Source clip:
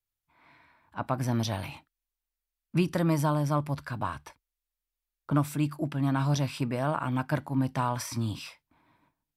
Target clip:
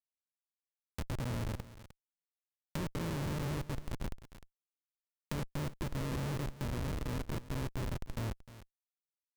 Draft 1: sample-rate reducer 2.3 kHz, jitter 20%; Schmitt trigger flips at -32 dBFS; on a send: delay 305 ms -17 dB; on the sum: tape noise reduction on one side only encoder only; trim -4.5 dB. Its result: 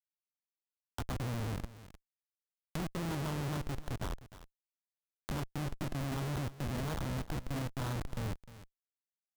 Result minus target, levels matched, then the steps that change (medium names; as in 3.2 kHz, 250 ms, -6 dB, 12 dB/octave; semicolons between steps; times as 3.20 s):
sample-rate reducer: distortion -9 dB
change: sample-rate reducer 740 Hz, jitter 20%